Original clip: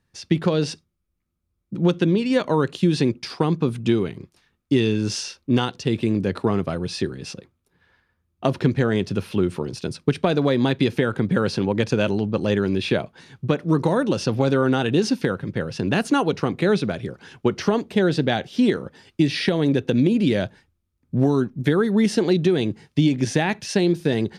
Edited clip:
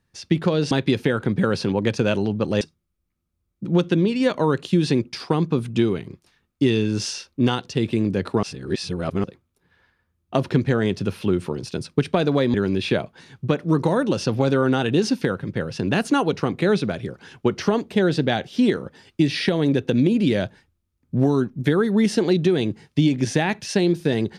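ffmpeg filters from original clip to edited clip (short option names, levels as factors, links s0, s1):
-filter_complex "[0:a]asplit=6[s0][s1][s2][s3][s4][s5];[s0]atrim=end=0.712[s6];[s1]atrim=start=10.638:end=12.542[s7];[s2]atrim=start=0.708:end=6.532[s8];[s3]atrim=start=6.528:end=7.342,asetpts=PTS-STARTPTS,areverse[s9];[s4]atrim=start=7.338:end=10.642[s10];[s5]atrim=start=12.538[s11];[s6][s7]acrossfade=d=0.004:c1=hsin:c2=hsin[s12];[s12][s8]acrossfade=d=0.004:c1=hsin:c2=hsin[s13];[s13][s9]acrossfade=d=0.004:c1=hsin:c2=hsin[s14];[s14][s10]acrossfade=d=0.004:c1=hsin:c2=hsin[s15];[s15][s11]acrossfade=d=0.004:c1=hsin:c2=hsin"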